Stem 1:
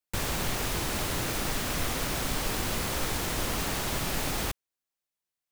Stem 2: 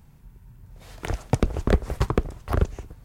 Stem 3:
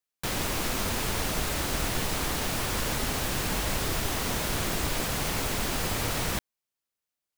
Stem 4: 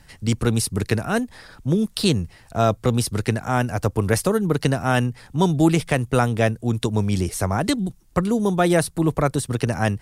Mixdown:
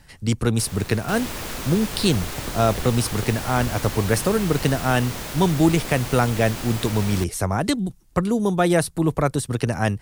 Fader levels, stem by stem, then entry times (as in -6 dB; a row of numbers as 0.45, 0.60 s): -8.5, -12.5, -2.5, -0.5 dB; 0.45, 1.05, 0.85, 0.00 s